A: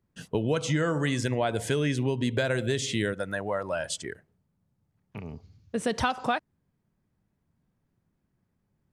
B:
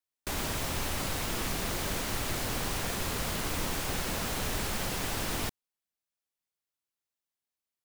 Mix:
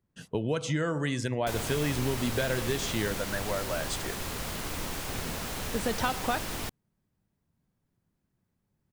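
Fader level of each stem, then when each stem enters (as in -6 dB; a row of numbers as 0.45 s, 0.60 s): -3.0 dB, -2.5 dB; 0.00 s, 1.20 s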